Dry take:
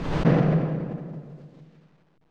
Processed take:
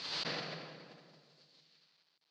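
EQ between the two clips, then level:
resonant band-pass 4,500 Hz, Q 5.4
+13.5 dB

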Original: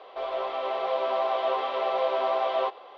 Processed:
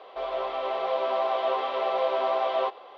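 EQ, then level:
low-shelf EQ 110 Hz +7.5 dB
0.0 dB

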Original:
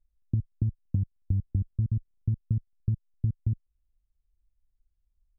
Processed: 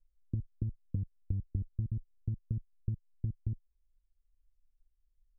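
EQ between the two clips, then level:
elliptic low-pass filter 520 Hz
parametric band 120 Hz −11.5 dB 3 octaves
parametric band 250 Hz −3 dB
+4.0 dB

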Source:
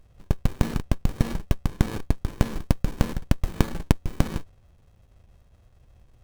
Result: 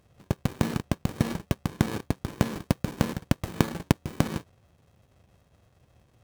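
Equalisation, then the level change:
high-pass filter 110 Hz 12 dB per octave
+1.0 dB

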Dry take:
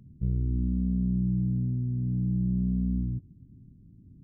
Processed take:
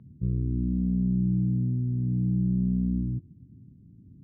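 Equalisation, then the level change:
high-pass filter 76 Hz
high-frequency loss of the air 400 metres
dynamic equaliser 330 Hz, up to +6 dB, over −56 dBFS, Q 6.3
+2.5 dB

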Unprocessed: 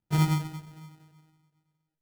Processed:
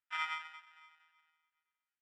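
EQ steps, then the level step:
Savitzky-Golay smoothing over 25 samples
inverse Chebyshev high-pass filter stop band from 490 Hz, stop band 50 dB
high-frequency loss of the air 53 metres
+3.0 dB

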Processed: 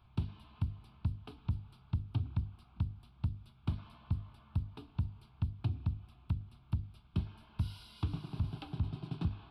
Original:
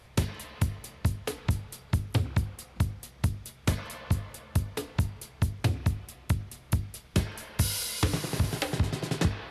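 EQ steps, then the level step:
dynamic equaliser 1,500 Hz, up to −6 dB, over −50 dBFS, Q 0.71
head-to-tape spacing loss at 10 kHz 23 dB
phaser with its sweep stopped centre 1,900 Hz, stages 6
−6.5 dB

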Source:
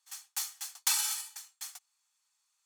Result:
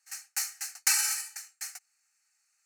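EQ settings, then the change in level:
parametric band 3,100 Hz +12 dB 2.9 octaves
phaser with its sweep stopped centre 690 Hz, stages 8
0.0 dB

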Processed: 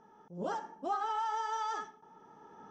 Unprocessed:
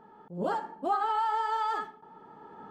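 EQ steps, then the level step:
low-pass with resonance 5,900 Hz, resonance Q 14
notch filter 4,400 Hz, Q 5.6
−6.0 dB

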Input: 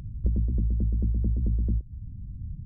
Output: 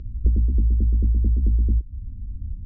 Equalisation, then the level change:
high-frequency loss of the air 180 metres
low-shelf EQ 300 Hz +9.5 dB
phaser with its sweep stopped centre 340 Hz, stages 4
0.0 dB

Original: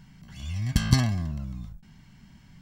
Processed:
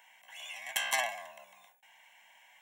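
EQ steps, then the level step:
high-pass filter 650 Hz 24 dB per octave
phaser with its sweep stopped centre 1,300 Hz, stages 6
+6.0 dB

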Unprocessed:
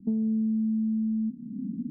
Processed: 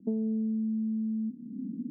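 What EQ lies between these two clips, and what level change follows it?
resonant band-pass 550 Hz, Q 1.9
+8.5 dB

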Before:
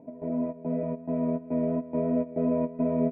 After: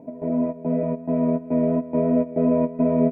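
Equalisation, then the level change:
parametric band 70 Hz −6.5 dB 0.24 octaves
+6.5 dB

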